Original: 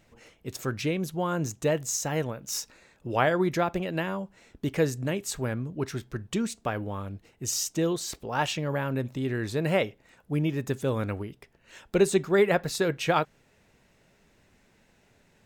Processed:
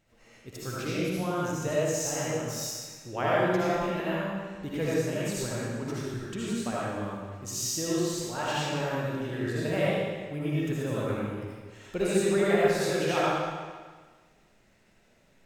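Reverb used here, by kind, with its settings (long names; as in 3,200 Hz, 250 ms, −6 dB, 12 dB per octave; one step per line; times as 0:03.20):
comb and all-pass reverb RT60 1.5 s, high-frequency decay 0.95×, pre-delay 35 ms, DRR −8 dB
level −9 dB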